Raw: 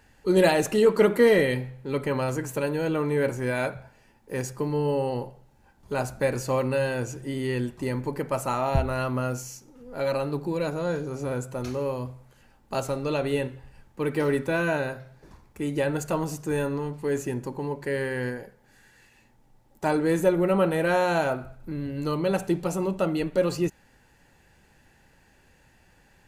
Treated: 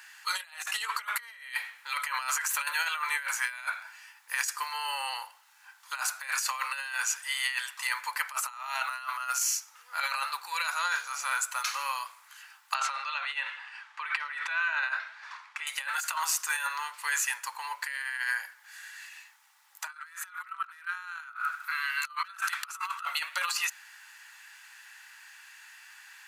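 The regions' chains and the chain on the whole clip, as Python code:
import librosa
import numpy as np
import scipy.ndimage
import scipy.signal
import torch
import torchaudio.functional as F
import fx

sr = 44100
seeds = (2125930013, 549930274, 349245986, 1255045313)

y = fx.chain(x, sr, fx.lowpass(hz=3500.0, slope=12),
    fx.over_compress(threshold_db=-33.0, ratio=-1.0), at=(12.74, 15.67))
y = fx.chain(y, sr, fx.highpass_res(hz=1300.0, q=3.7),
    fx.over_compress(threshold_db=-27.0, ratio=-0.5),
    fx.clip_hard(threshold_db=-20.0), at=(19.87, 23.05))
y = scipy.signal.sosfilt(scipy.signal.butter(6, 1100.0, 'highpass', fs=sr, output='sos'), y)
y = fx.over_compress(y, sr, threshold_db=-40.0, ratio=-0.5)
y = y * librosa.db_to_amplitude(8.0)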